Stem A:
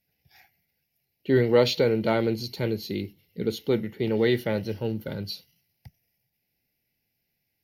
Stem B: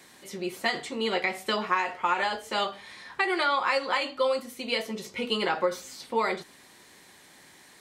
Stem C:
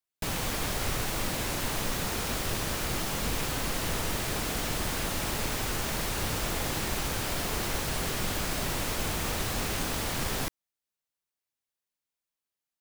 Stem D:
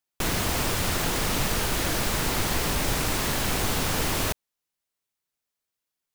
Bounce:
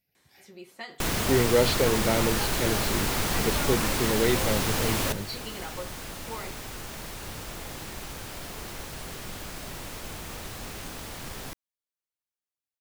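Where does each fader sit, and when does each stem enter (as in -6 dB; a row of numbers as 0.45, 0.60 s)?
-2.5, -13.0, -7.5, -1.5 dB; 0.00, 0.15, 1.05, 0.80 s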